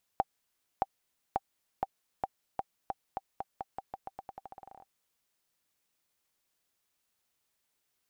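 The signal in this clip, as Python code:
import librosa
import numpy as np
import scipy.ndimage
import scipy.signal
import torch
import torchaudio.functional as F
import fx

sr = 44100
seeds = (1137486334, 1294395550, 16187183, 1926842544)

y = fx.bouncing_ball(sr, first_gap_s=0.62, ratio=0.87, hz=780.0, decay_ms=36.0, level_db=-14.0)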